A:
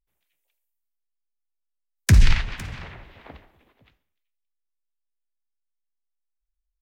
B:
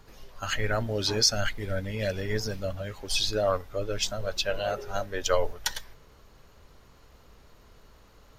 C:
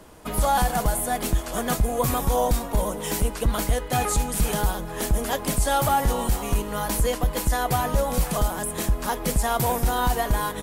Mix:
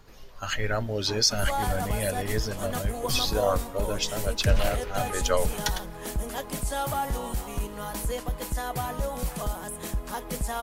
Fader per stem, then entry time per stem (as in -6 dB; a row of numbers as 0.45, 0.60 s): -11.0, 0.0, -7.5 dB; 2.35, 0.00, 1.05 s